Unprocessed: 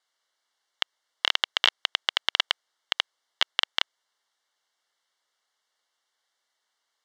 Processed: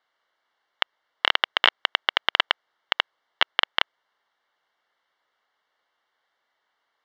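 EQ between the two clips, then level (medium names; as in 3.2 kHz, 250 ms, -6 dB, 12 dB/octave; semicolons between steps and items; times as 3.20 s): low-pass 2.4 kHz 12 dB/octave; +7.5 dB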